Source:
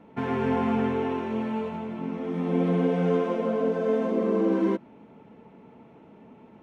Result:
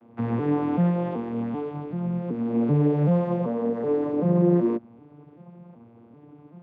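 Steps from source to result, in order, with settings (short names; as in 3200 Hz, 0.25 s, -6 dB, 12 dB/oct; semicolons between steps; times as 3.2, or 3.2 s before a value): arpeggiated vocoder major triad, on A#2, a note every 0.383 s; gain +3 dB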